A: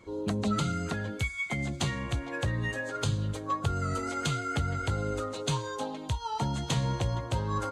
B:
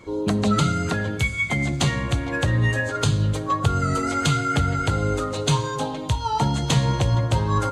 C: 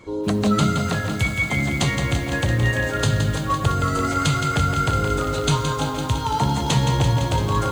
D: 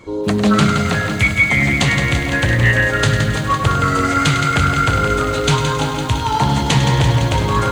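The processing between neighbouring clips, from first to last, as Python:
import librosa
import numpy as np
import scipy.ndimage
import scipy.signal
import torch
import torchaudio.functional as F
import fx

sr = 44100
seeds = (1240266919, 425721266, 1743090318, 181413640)

y1 = fx.room_shoebox(x, sr, seeds[0], volume_m3=1200.0, walls='mixed', distance_m=0.44)
y1 = F.gain(torch.from_numpy(y1), 8.5).numpy()
y2 = fx.echo_crushed(y1, sr, ms=169, feedback_pct=80, bits=7, wet_db=-7.0)
y3 = fx.dynamic_eq(y2, sr, hz=2100.0, q=1.5, threshold_db=-39.0, ratio=4.0, max_db=6)
y3 = y3 + 10.0 ** (-10.0 / 20.0) * np.pad(y3, (int(101 * sr / 1000.0), 0))[:len(y3)]
y3 = fx.doppler_dist(y3, sr, depth_ms=0.19)
y3 = F.gain(torch.from_numpy(y3), 4.0).numpy()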